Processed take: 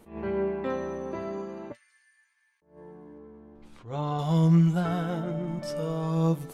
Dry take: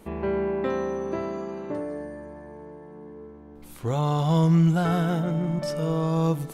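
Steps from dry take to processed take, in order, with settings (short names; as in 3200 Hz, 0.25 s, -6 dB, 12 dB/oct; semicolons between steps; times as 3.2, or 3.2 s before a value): 1.72–2.62 inverse Chebyshev high-pass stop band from 610 Hz, stop band 60 dB; 4.8–5.48 high shelf 6100 Hz -6.5 dB; flange 0.56 Hz, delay 8.4 ms, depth 3.8 ms, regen +49%; 3.18–4.19 air absorption 110 m; attack slew limiter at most 150 dB/s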